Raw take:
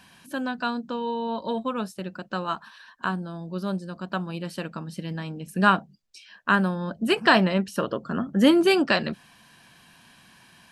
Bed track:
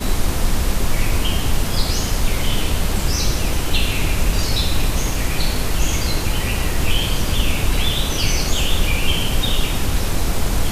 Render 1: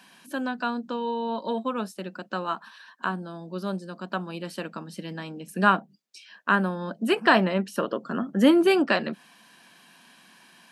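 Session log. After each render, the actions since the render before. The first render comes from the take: HPF 190 Hz 24 dB/oct; dynamic EQ 5700 Hz, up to -7 dB, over -42 dBFS, Q 0.73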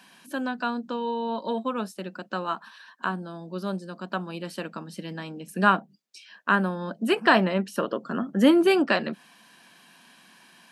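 nothing audible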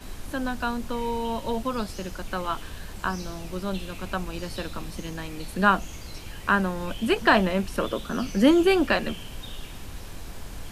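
add bed track -19.5 dB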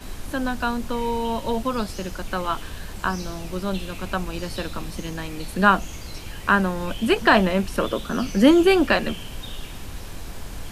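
gain +3.5 dB; limiter -2 dBFS, peak gain reduction 1.5 dB

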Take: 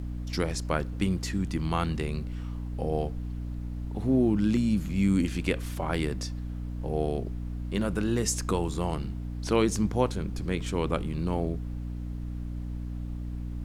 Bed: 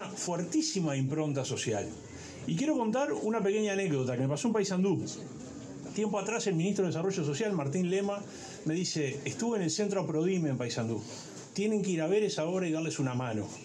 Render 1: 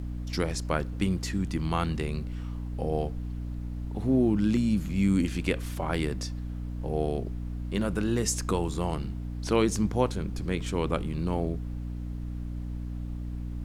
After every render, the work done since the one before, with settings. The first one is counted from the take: nothing audible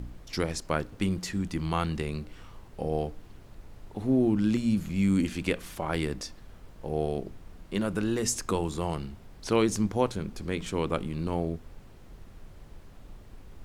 de-hum 60 Hz, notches 5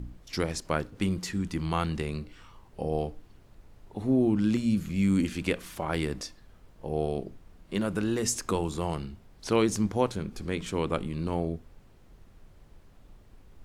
noise print and reduce 6 dB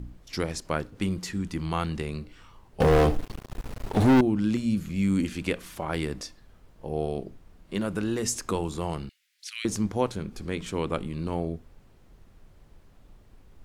2.8–4.21 sample leveller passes 5; 9.09–9.65 steep high-pass 1900 Hz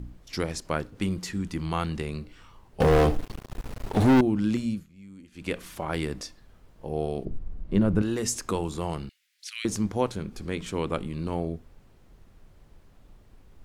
4.62–5.57 dip -22.5 dB, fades 0.25 s; 7.25–8.02 tilt -3.5 dB/oct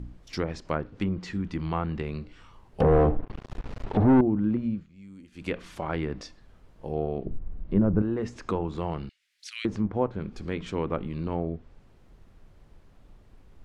treble ducked by the level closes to 1200 Hz, closed at -22.5 dBFS; high shelf 5700 Hz -6 dB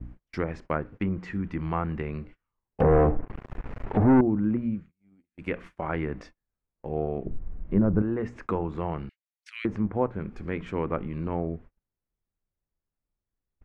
gate -43 dBFS, range -34 dB; resonant high shelf 2900 Hz -10 dB, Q 1.5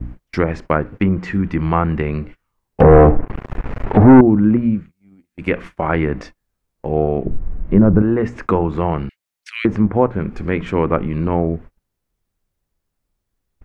gain +12 dB; limiter -1 dBFS, peak gain reduction 3 dB

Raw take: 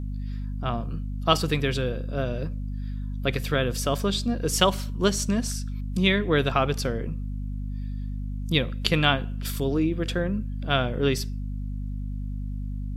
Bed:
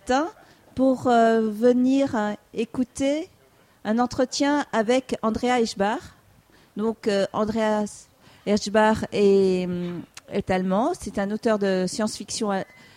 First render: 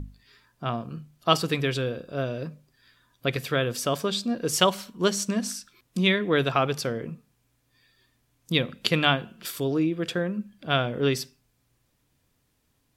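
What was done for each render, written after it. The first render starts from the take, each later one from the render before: notches 50/100/150/200/250 Hz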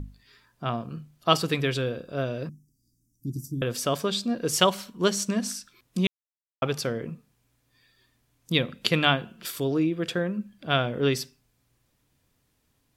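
2.49–3.62 Chebyshev band-stop 330–5500 Hz, order 5; 6.07–6.62 mute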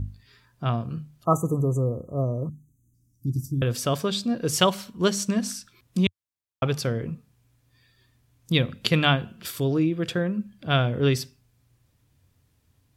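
1.25–2.94 spectral delete 1300–6000 Hz; bell 91 Hz +13 dB 1.2 oct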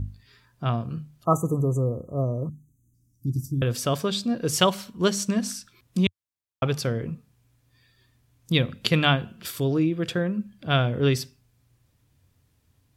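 nothing audible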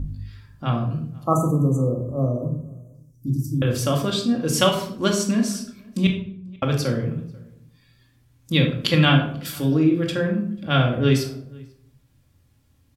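outdoor echo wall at 84 m, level -26 dB; shoebox room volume 900 m³, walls furnished, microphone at 2.3 m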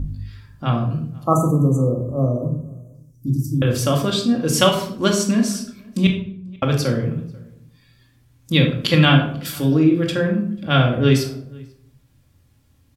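gain +3 dB; limiter -2 dBFS, peak gain reduction 2.5 dB

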